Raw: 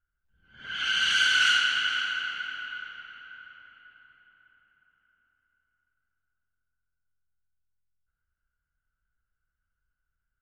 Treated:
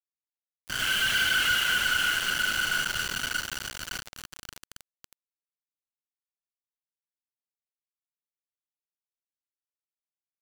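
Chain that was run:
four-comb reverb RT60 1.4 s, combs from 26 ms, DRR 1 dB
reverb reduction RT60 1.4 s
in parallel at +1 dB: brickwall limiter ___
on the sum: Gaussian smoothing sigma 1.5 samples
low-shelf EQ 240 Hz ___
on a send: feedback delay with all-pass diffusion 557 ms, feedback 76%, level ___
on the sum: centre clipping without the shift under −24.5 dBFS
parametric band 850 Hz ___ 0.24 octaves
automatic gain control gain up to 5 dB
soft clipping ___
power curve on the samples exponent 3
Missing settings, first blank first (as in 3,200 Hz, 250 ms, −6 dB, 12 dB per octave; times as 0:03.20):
−23 dBFS, +10 dB, −6 dB, −6.5 dB, −20 dBFS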